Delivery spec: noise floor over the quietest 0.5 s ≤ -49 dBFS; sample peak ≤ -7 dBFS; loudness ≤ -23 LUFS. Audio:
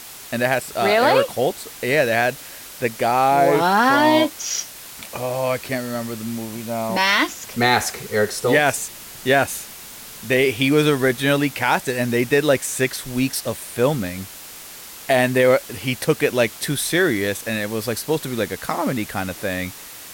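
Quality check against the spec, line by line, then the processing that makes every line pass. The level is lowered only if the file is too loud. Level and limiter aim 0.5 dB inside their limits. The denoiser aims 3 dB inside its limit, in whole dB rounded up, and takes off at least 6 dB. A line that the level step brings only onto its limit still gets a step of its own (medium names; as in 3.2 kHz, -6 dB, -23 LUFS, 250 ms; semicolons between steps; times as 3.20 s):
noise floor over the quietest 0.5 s -38 dBFS: fail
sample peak -5.0 dBFS: fail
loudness -20.0 LUFS: fail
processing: noise reduction 11 dB, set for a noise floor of -38 dBFS; trim -3.5 dB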